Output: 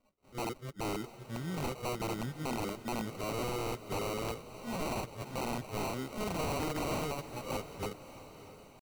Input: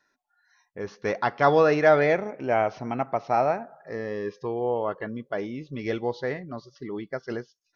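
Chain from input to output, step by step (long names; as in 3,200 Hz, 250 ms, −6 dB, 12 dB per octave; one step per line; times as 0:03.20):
played backwards from end to start
notch filter 710 Hz, Q 12
harmonic and percussive parts rebalanced percussive −18 dB
drawn EQ curve 340 Hz 0 dB, 710 Hz −5 dB, 1,900 Hz −7 dB, 3,700 Hz +9 dB, 5,200 Hz +6 dB, 7,400 Hz −18 dB
downward compressor 5 to 1, threshold −36 dBFS, peak gain reduction 16 dB
sample-rate reduction 1,700 Hz, jitter 0%
tempo change 0.88×
wrap-around overflow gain 33.5 dB
on a send: feedback delay with all-pass diffusion 634 ms, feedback 49%, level −13.5 dB
on the sum: level +3.5 dB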